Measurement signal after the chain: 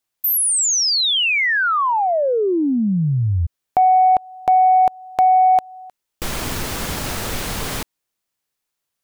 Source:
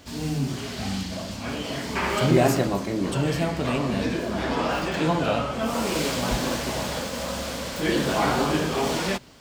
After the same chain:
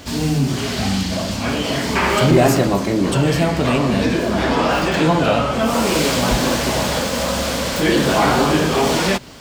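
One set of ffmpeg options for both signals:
-filter_complex "[0:a]asplit=2[a][b];[b]acompressor=threshold=-30dB:ratio=6,volume=-1dB[c];[a][c]amix=inputs=2:normalize=0,asoftclip=type=tanh:threshold=-9.5dB,volume=6dB"

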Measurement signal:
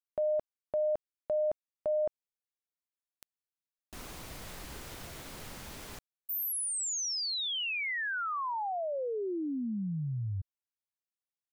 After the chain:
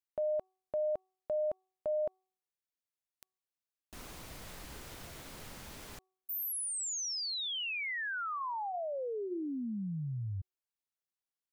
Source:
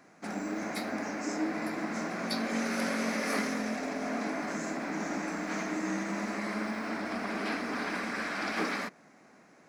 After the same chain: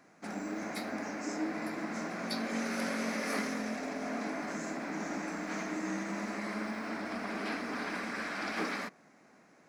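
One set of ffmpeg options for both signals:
-af "bandreject=f=375.5:t=h:w=4,bandreject=f=751:t=h:w=4,bandreject=f=1.1265k:t=h:w=4,volume=-3dB"

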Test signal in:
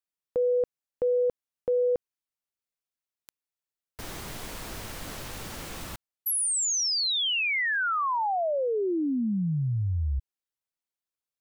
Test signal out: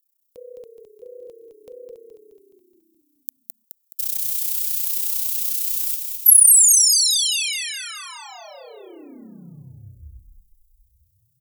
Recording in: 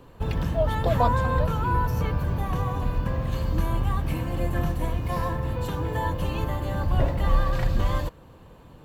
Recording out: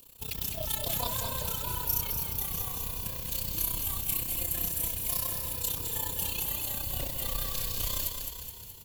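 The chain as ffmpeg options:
-filter_complex "[0:a]aemphasis=mode=production:type=75fm,tremolo=f=31:d=0.857,asplit=9[a][b][c][d][e][f][g][h][i];[b]adelay=211,afreqshift=-33,volume=-5.5dB[j];[c]adelay=422,afreqshift=-66,volume=-10.2dB[k];[d]adelay=633,afreqshift=-99,volume=-15dB[l];[e]adelay=844,afreqshift=-132,volume=-19.7dB[m];[f]adelay=1055,afreqshift=-165,volume=-24.4dB[n];[g]adelay=1266,afreqshift=-198,volume=-29.2dB[o];[h]adelay=1477,afreqshift=-231,volume=-33.9dB[p];[i]adelay=1688,afreqshift=-264,volume=-38.6dB[q];[a][j][k][l][m][n][o][p][q]amix=inputs=9:normalize=0,aexciter=amount=5.6:drive=4.4:freq=2.4k,volume=-11.5dB"

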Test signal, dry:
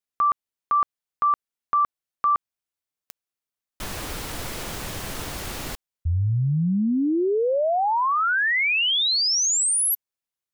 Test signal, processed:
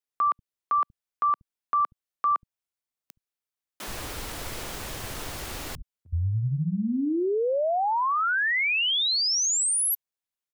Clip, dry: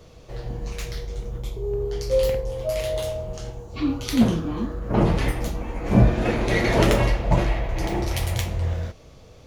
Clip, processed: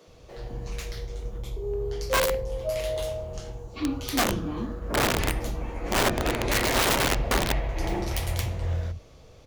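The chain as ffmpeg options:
-filter_complex "[0:a]aeval=exprs='(mod(5.01*val(0)+1,2)-1)/5.01':c=same,acrossover=split=180[a][b];[a]adelay=70[c];[c][b]amix=inputs=2:normalize=0,volume=-3dB"

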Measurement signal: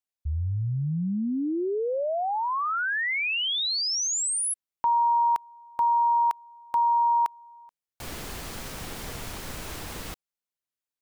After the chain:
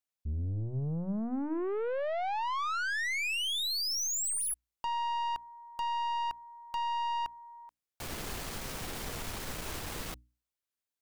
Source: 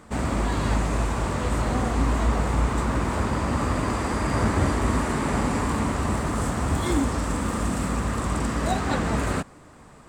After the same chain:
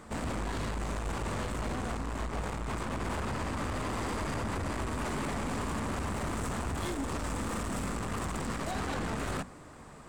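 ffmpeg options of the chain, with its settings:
-af "acompressor=threshold=-28dB:ratio=6:attack=40:release=25:knee=1:detection=rms,aeval=exprs='(tanh(35.5*val(0)+0.3)-tanh(0.3))/35.5':c=same,bandreject=f=60:t=h:w=6,bandreject=f=120:t=h:w=6,bandreject=f=180:t=h:w=6,bandreject=f=240:t=h:w=6,bandreject=f=300:t=h:w=6"

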